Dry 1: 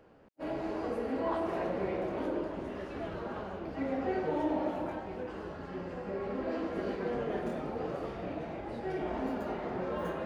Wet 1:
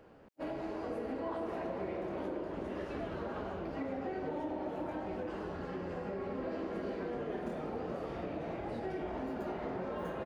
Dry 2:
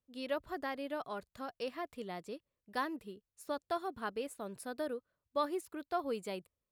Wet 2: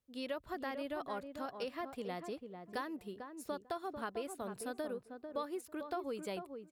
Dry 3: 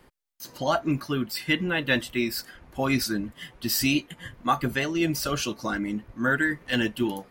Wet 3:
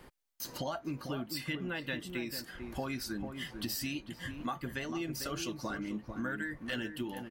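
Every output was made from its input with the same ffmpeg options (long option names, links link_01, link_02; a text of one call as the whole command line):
ffmpeg -i in.wav -filter_complex "[0:a]acompressor=threshold=-38dB:ratio=5,asplit=2[link_01][link_02];[link_02]adelay=446,lowpass=frequency=1000:poles=1,volume=-6dB,asplit=2[link_03][link_04];[link_04]adelay=446,lowpass=frequency=1000:poles=1,volume=0.17,asplit=2[link_05][link_06];[link_06]adelay=446,lowpass=frequency=1000:poles=1,volume=0.17[link_07];[link_01][link_03][link_05][link_07]amix=inputs=4:normalize=0,volume=1.5dB" out.wav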